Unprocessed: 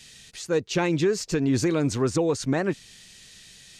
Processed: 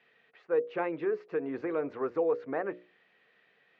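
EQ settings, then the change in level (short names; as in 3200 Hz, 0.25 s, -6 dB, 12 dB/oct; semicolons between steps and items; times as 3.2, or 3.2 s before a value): speaker cabinet 380–2100 Hz, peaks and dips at 470 Hz +8 dB, 720 Hz +4 dB, 1200 Hz +4 dB; notches 60/120/180/240/300/360/420/480/540/600 Hz; -7.5 dB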